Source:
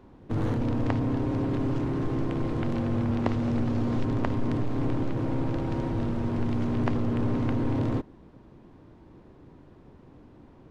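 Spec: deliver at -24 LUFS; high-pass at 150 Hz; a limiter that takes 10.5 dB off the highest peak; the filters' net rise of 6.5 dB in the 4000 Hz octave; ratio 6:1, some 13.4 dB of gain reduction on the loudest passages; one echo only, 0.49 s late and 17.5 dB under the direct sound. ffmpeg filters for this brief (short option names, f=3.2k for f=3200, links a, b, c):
-af "highpass=150,equalizer=f=4k:t=o:g=8.5,acompressor=threshold=-37dB:ratio=6,alimiter=level_in=9dB:limit=-24dB:level=0:latency=1,volume=-9dB,aecho=1:1:490:0.133,volume=17.5dB"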